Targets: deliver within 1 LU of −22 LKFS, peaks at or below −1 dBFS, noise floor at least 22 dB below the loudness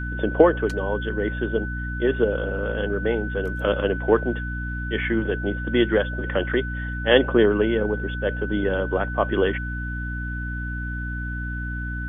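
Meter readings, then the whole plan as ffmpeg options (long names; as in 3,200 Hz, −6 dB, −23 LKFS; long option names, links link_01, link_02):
mains hum 60 Hz; hum harmonics up to 300 Hz; level of the hum −27 dBFS; interfering tone 1,500 Hz; level of the tone −32 dBFS; integrated loudness −24.0 LKFS; sample peak −1.5 dBFS; target loudness −22.0 LKFS
→ -af "bandreject=frequency=60:width_type=h:width=4,bandreject=frequency=120:width_type=h:width=4,bandreject=frequency=180:width_type=h:width=4,bandreject=frequency=240:width_type=h:width=4,bandreject=frequency=300:width_type=h:width=4"
-af "bandreject=frequency=1500:width=30"
-af "volume=2dB,alimiter=limit=-1dB:level=0:latency=1"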